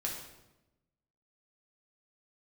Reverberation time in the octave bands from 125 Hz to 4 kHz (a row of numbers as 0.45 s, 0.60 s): 1.3 s, 1.3 s, 1.1 s, 0.90 s, 0.80 s, 0.75 s